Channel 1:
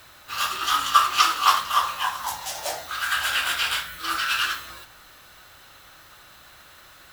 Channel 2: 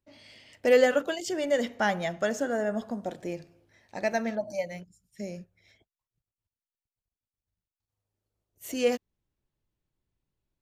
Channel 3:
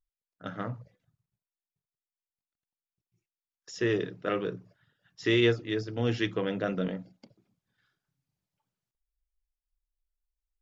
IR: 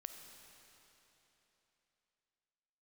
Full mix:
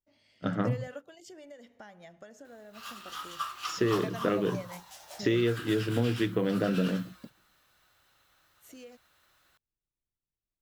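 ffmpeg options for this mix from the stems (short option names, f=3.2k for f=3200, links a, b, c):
-filter_complex "[0:a]adelay=2450,volume=-18dB[a];[1:a]acompressor=threshold=-32dB:ratio=12,volume=-5dB[b];[2:a]agate=range=-18dB:threshold=-52dB:ratio=16:detection=peak,equalizer=f=190:t=o:w=2.9:g=8,acompressor=threshold=-27dB:ratio=6,volume=3dB,asplit=2[c][d];[d]apad=whole_len=468010[e];[b][e]sidechaingate=range=-9dB:threshold=-57dB:ratio=16:detection=peak[f];[a][f][c]amix=inputs=3:normalize=0"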